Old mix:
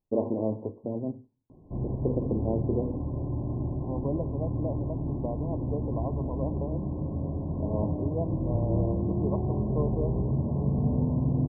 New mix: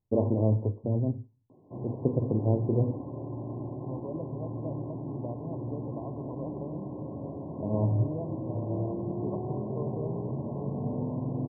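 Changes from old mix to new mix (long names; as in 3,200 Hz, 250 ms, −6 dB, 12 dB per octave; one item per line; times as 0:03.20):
second voice −6.5 dB
background: add high-pass filter 320 Hz 12 dB per octave
master: add parametric band 110 Hz +13 dB 0.74 octaves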